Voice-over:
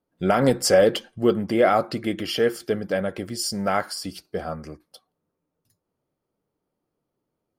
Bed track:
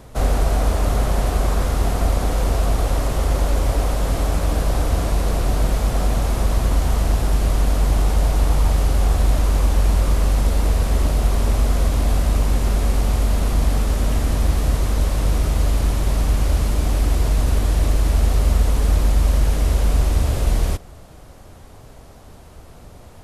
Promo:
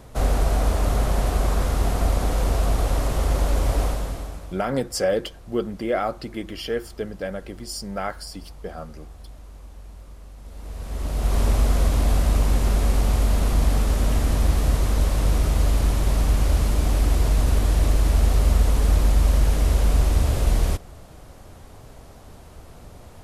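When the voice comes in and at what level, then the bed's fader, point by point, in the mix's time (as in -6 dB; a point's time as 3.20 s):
4.30 s, -5.5 dB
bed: 3.85 s -2.5 dB
4.73 s -25.5 dB
10.37 s -25.5 dB
11.38 s -1.5 dB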